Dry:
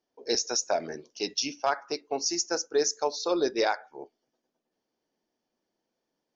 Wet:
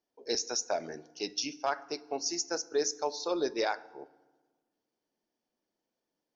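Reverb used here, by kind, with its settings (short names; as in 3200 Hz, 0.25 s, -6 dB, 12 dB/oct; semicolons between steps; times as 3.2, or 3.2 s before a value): FDN reverb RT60 1.3 s, low-frequency decay 1.3×, high-frequency decay 0.65×, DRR 18.5 dB; gain -4.5 dB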